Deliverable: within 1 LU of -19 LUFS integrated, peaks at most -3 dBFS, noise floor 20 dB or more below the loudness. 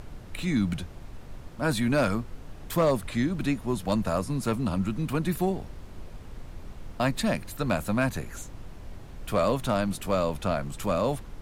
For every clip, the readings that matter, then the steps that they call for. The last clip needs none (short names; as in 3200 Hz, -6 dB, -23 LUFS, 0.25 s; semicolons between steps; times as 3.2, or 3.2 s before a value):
clipped 0.3%; flat tops at -16.5 dBFS; noise floor -44 dBFS; noise floor target -48 dBFS; loudness -28.0 LUFS; peak -16.5 dBFS; loudness target -19.0 LUFS
-> clip repair -16.5 dBFS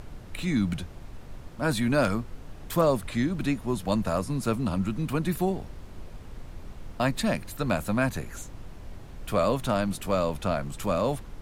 clipped 0.0%; noise floor -44 dBFS; noise floor target -48 dBFS
-> noise print and reduce 6 dB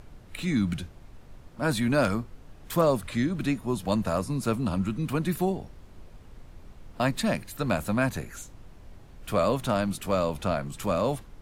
noise floor -50 dBFS; loudness -28.0 LUFS; peak -10.0 dBFS; loudness target -19.0 LUFS
-> gain +9 dB; limiter -3 dBFS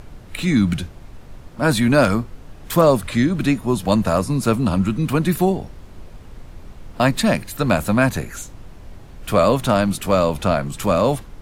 loudness -19.0 LUFS; peak -3.0 dBFS; noise floor -41 dBFS